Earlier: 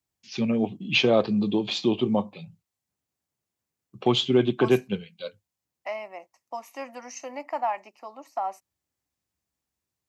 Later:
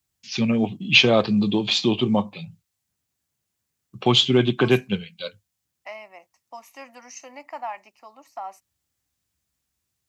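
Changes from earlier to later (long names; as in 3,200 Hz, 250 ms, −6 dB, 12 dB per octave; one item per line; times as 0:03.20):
first voice +8.5 dB
master: add parametric band 430 Hz −7.5 dB 2.5 octaves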